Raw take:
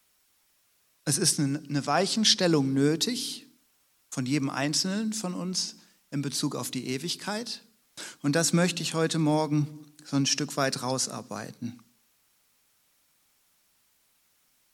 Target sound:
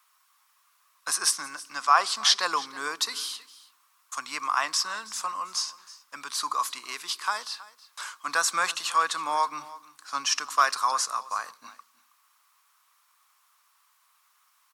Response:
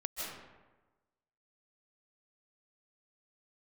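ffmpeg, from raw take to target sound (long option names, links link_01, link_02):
-filter_complex "[0:a]highpass=frequency=1100:width_type=q:width=6.7,asplit=2[link_01][link_02];[link_02]aecho=0:1:321:0.112[link_03];[link_01][link_03]amix=inputs=2:normalize=0"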